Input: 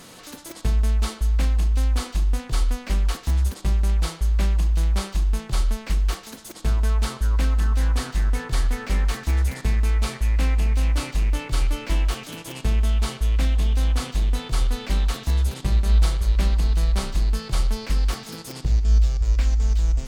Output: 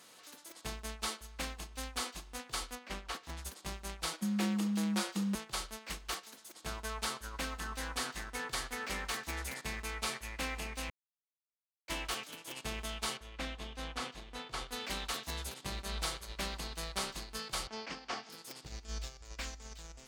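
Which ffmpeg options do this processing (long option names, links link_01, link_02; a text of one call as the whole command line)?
ffmpeg -i in.wav -filter_complex "[0:a]asettb=1/sr,asplit=3[link_01][link_02][link_03];[link_01]atrim=end=2.754[link_04];[link_02]atrim=start=2.75:end=3.37,asetpts=PTS-STARTPTS,afade=type=in:duration=0.004:curve=qsin,afade=type=out:start_time=0.616:duration=0.004:curve=qsin,highshelf=frequency=6000:gain=-11[link_05];[link_03]atrim=start=3.366[link_06];[link_04][link_05]acrossfade=duration=0.004:curve1=hsin:curve2=qsin[link_07];[link_07][link_06]acrossfade=duration=0.004:curve1=qsin:curve2=hsin,asettb=1/sr,asplit=3[link_08][link_09][link_10];[link_08]atrim=end=4.134[link_11];[link_09]atrim=start=4.13:end=5.35,asetpts=PTS-STARTPTS,afade=type=in:duration=0.004:curve=qsin,afade=type=out:start_time=1.216:duration=0.004:curve=qsin,afreqshift=150[link_12];[link_10]atrim=start=5.346[link_13];[link_11][link_12]acrossfade=duration=0.004:curve1=hsin:curve2=qsin[link_14];[link_14][link_13]acrossfade=duration=0.004:curve1=qsin:curve2=hsin,asettb=1/sr,asplit=3[link_15][link_16][link_17];[link_15]atrim=end=13.174[link_18];[link_16]atrim=start=13.17:end=14.71,asetpts=PTS-STARTPTS,afade=type=in:duration=0.004:curve=qsin,afade=type=out:start_time=1.536:duration=0.004:curve=qsin,aemphasis=mode=reproduction:type=50kf[link_19];[link_17]atrim=start=14.706[link_20];[link_18][link_19]acrossfade=duration=0.004:curve1=hsin:curve2=qsin[link_21];[link_21][link_20]acrossfade=duration=0.004:curve1=qsin:curve2=hsin,asettb=1/sr,asplit=3[link_22][link_23][link_24];[link_22]atrim=end=17.674[link_25];[link_23]atrim=start=17.67:end=18.3,asetpts=PTS-STARTPTS,afade=type=in:duration=0.004:curve=qsin,afade=type=out:start_time=0.626:duration=0.004:curve=qsin,highpass=120,equalizer=frequency=270:width_type=q:width=4:gain=4,equalizer=frequency=730:width_type=q:width=4:gain=6,equalizer=frequency=3900:width_type=q:width=4:gain=-7,lowpass=frequency=5600:width=0.5412,lowpass=frequency=5600:width=1.3066[link_26];[link_24]atrim=start=18.296[link_27];[link_25][link_26]acrossfade=duration=0.004:curve1=hsin:curve2=qsin[link_28];[link_28][link_27]acrossfade=duration=0.004:curve1=qsin:curve2=hsin,asplit=3[link_29][link_30][link_31];[link_29]atrim=end=10.9,asetpts=PTS-STARTPTS,afade=type=out:start_time=10.896:duration=0.004:curve=hsin[link_32];[link_30]atrim=start=10.9:end=11.88,asetpts=PTS-STARTPTS,volume=0[link_33];[link_31]atrim=start=11.88,asetpts=PTS-STARTPTS,afade=type=in:duration=0.004:curve=hsin[link_34];[link_32][link_33][link_34]concat=n=3:v=0:a=1,highpass=frequency=690:poles=1,agate=range=-8dB:threshold=-37dB:ratio=16:detection=peak,volume=-3.5dB" out.wav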